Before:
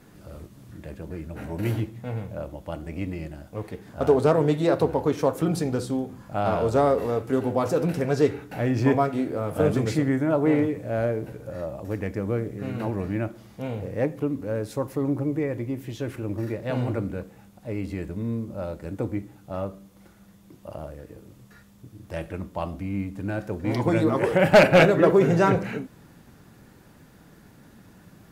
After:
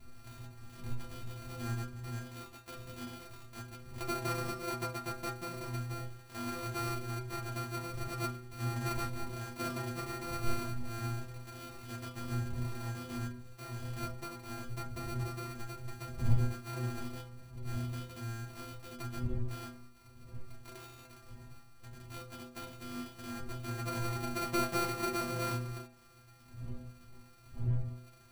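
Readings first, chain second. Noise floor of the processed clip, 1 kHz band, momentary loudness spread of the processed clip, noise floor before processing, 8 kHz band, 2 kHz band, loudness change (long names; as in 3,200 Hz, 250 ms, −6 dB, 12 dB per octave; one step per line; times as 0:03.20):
−57 dBFS, −11.0 dB, 16 LU, −53 dBFS, −1.5 dB, −14.0 dB, −14.5 dB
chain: samples sorted by size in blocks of 128 samples
wind on the microphone 85 Hz −27 dBFS
stiff-string resonator 120 Hz, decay 0.59 s, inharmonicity 0.008
one half of a high-frequency compander encoder only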